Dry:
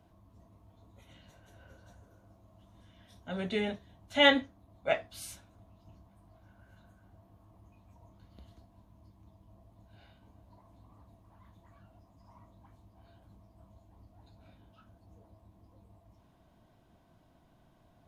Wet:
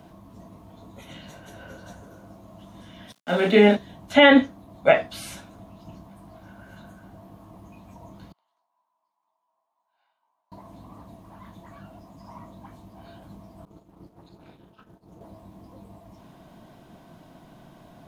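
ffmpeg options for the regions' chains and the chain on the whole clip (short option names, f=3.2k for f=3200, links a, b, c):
-filter_complex "[0:a]asettb=1/sr,asplit=3[a][b][c];[a]atrim=end=3.124[d];[b]atrim=start=3.12:end=3.77,asetpts=PTS-STARTPTS,afade=t=in:d=0.004:c=qsin,afade=t=out:st=0.646:d=0.004:c=qsin,highpass=f=210:w=0.5412,highpass=f=210:w=1.3066,aeval=exprs='sgn(val(0))*max(abs(val(0))-0.00178,0)':c=same,asplit=2[e][f];[f]adelay=34,volume=-2dB[g];[e][g]amix=inputs=2:normalize=0,atrim=end_sample=28665[h];[c]atrim=start=3.766[i];[d][h]acrossfade=d=0.004:c1=hsin:c2=qsin[j];[j][i]acrossfade=d=0.004:c1=qsin:c2=hsin,asettb=1/sr,asplit=3[k][l][m];[k]atrim=end=8.324[n];[l]atrim=start=8.32:end=10.52,asetpts=PTS-STARTPTS,afade=t=in:d=0.004:c=qsin,afade=t=out:st=2.196:d=0.004:c=qsin,bandpass=f=930:t=q:w=4.3,aderivative,asplit=2[o][p];[p]adelay=14,volume=-11.5dB[q];[o][q]amix=inputs=2:normalize=0,atrim=end_sample=97020[r];[m]atrim=start=10.516[s];[n][r]acrossfade=d=0.004:c1=hsin:c2=qsin[t];[t][s]acrossfade=d=0.004:c1=qsin:c2=hsin,asettb=1/sr,asplit=3[u][v][w];[u]atrim=end=13.654[x];[v]atrim=start=13.65:end=15.21,asetpts=PTS-STARTPTS,afade=t=in:d=0.004:c=qsin,afade=t=out:st=1.556:d=0.004:c=qsin,agate=range=-33dB:threshold=-56dB:ratio=3:release=100:detection=peak,tremolo=f=240:d=0.974[y];[w]atrim=start=15.206[z];[x][y]acrossfade=d=0.004:c1=hsin:c2=qsin[aa];[aa][z]acrossfade=d=0.004:c1=qsin:c2=hsin,acrossover=split=3100[ab][ac];[ac]acompressor=threshold=-55dB:ratio=4:attack=1:release=60[ad];[ab][ad]amix=inputs=2:normalize=0,lowshelf=f=120:t=q:w=1.5:g=-7,alimiter=level_in=19dB:limit=-1dB:release=50:level=0:latency=1,volume=-3.5dB"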